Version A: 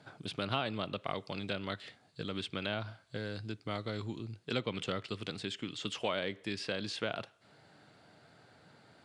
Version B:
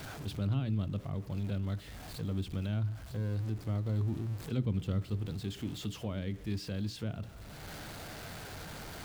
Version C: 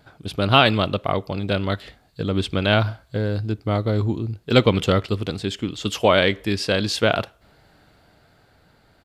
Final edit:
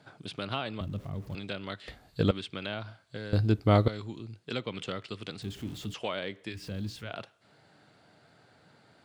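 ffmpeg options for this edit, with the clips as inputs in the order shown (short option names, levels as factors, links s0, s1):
-filter_complex "[1:a]asplit=3[s0][s1][s2];[2:a]asplit=2[s3][s4];[0:a]asplit=6[s5][s6][s7][s8][s9][s10];[s5]atrim=end=0.812[s11];[s0]atrim=start=0.808:end=1.352[s12];[s6]atrim=start=1.348:end=1.882[s13];[s3]atrim=start=1.878:end=2.312[s14];[s7]atrim=start=2.308:end=3.332[s15];[s4]atrim=start=3.328:end=3.882[s16];[s8]atrim=start=3.878:end=5.422[s17];[s1]atrim=start=5.418:end=5.942[s18];[s9]atrim=start=5.938:end=6.64[s19];[s2]atrim=start=6.48:end=7.14[s20];[s10]atrim=start=6.98[s21];[s11][s12]acrossfade=d=0.004:c1=hsin:c2=hsin[s22];[s22][s13]acrossfade=d=0.004:c1=hsin:c2=hsin[s23];[s23][s14]acrossfade=d=0.004:c1=hsin:c2=hsin[s24];[s24][s15]acrossfade=d=0.004:c1=hsin:c2=hsin[s25];[s25][s16]acrossfade=d=0.004:c1=hsin:c2=hsin[s26];[s26][s17]acrossfade=d=0.004:c1=hsin:c2=hsin[s27];[s27][s18]acrossfade=d=0.004:c1=hsin:c2=hsin[s28];[s28][s19]acrossfade=d=0.004:c1=hsin:c2=hsin[s29];[s29][s20]acrossfade=d=0.16:c1=tri:c2=tri[s30];[s30][s21]acrossfade=d=0.16:c1=tri:c2=tri"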